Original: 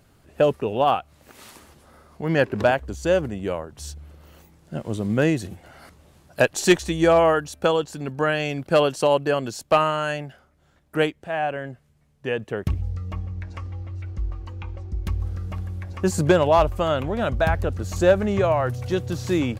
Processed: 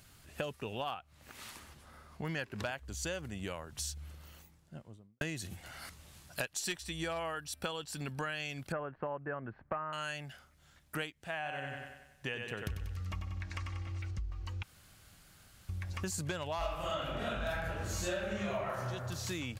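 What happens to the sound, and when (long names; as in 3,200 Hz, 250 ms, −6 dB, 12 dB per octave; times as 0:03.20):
0:00.94–0:02.25: high-shelf EQ 3,100 Hz −10 dB
0:03.89–0:05.21: fade out and dull
0:06.63–0:08.20: notch filter 6,600 Hz, Q 6.8
0:08.72–0:09.93: Butterworth low-pass 1,800 Hz
0:11.36–0:14.11: feedback echo with a high-pass in the loop 94 ms, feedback 51%, high-pass 170 Hz, level −4.5 dB
0:14.63–0:15.69: fill with room tone
0:16.58–0:18.77: thrown reverb, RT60 1.1 s, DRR −11 dB
whole clip: guitar amp tone stack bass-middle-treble 5-5-5; downward compressor 6 to 1, threshold −47 dBFS; level +11 dB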